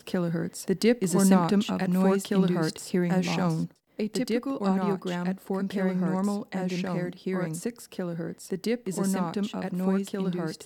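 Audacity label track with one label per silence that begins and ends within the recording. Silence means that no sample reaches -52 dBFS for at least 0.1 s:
3.720000	3.970000	silence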